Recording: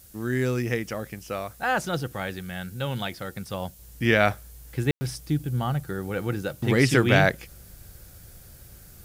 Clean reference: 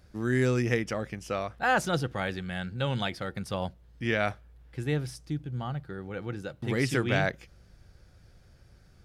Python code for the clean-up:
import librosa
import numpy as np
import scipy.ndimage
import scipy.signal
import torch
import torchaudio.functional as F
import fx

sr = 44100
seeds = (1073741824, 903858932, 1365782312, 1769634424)

y = fx.fix_ambience(x, sr, seeds[0], print_start_s=8.42, print_end_s=8.92, start_s=4.91, end_s=5.01)
y = fx.noise_reduce(y, sr, print_start_s=8.42, print_end_s=8.92, reduce_db=8.0)
y = fx.fix_level(y, sr, at_s=3.79, step_db=-7.5)